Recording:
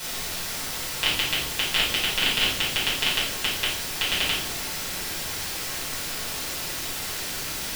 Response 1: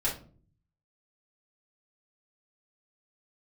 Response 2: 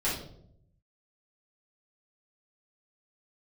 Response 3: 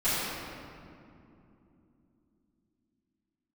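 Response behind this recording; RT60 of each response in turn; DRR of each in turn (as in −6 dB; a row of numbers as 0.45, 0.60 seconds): 2; 0.45, 0.70, 2.8 seconds; −7.0, −9.5, −16.0 decibels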